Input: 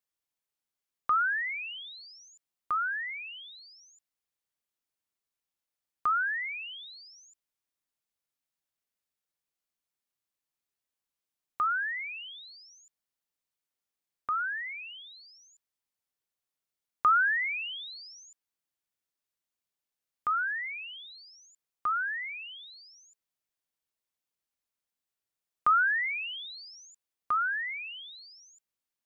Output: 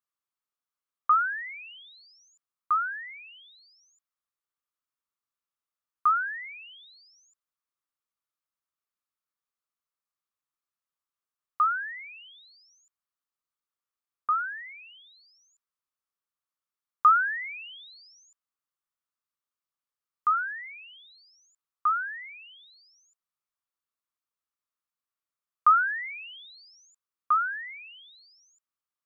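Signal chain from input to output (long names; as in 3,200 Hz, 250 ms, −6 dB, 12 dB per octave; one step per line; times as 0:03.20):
parametric band 1,200 Hz +13 dB 0.6 octaves
notch filter 770 Hz, Q 22
level −7 dB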